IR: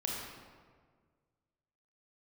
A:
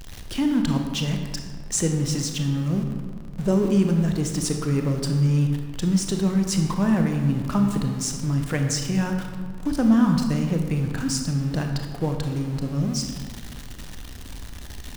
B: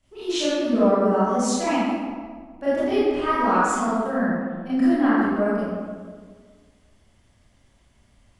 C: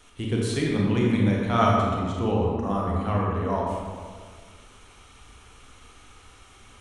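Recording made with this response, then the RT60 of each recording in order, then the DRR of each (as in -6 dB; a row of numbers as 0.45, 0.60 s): C; 1.7, 1.7, 1.7 s; 4.0, -12.5, -3.0 dB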